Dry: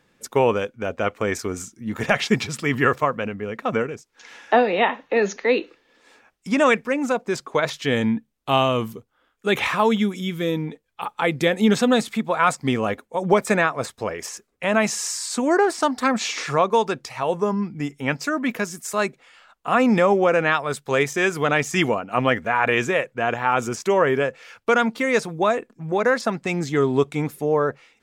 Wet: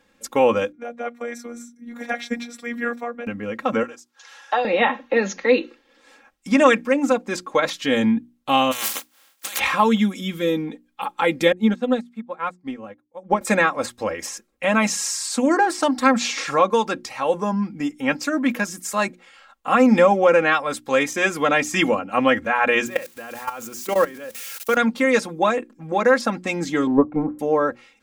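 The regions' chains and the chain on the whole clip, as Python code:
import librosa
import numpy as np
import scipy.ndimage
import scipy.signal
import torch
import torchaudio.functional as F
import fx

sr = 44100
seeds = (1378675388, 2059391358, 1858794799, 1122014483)

y = fx.chain(x, sr, fx.cheby_ripple_highpass(hz=180.0, ripple_db=9),
    fx.robotise(hz=237.0), at=(0.72, 3.27))
y = fx.chain(y, sr, fx.highpass(hz=790.0, slope=12),
    fx.peak_eq(hz=2200.0, db=-8.0, octaves=0.57), at=(3.83, 4.65))
y = fx.spec_flatten(y, sr, power=0.25, at=(8.71, 9.58), fade=0.02)
y = fx.highpass(y, sr, hz=900.0, slope=6, at=(8.71, 9.58), fade=0.02)
y = fx.over_compress(y, sr, threshold_db=-32.0, ratio=-1.0, at=(8.71, 9.58), fade=0.02)
y = fx.chain(y, sr, fx.high_shelf(hz=2600.0, db=-10.0),
    fx.upward_expand(threshold_db=-30.0, expansion=2.5), at=(11.52, 13.41))
y = fx.chain(y, sr, fx.crossing_spikes(level_db=-23.5),
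    fx.hum_notches(base_hz=50, count=5),
    fx.level_steps(step_db=18), at=(22.86, 24.77))
y = fx.chain(y, sr, fx.lowpass(hz=1100.0, slope=24),
    fx.transient(attack_db=9, sustain_db=4), at=(26.87, 27.39))
y = fx.hum_notches(y, sr, base_hz=60, count=6)
y = y + 0.72 * np.pad(y, (int(3.7 * sr / 1000.0), 0))[:len(y)]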